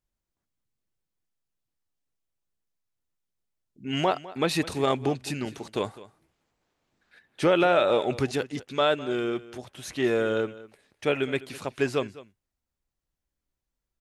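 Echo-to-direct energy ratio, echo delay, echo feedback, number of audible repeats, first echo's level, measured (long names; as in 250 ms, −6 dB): −18.0 dB, 205 ms, repeats not evenly spaced, 1, −18.0 dB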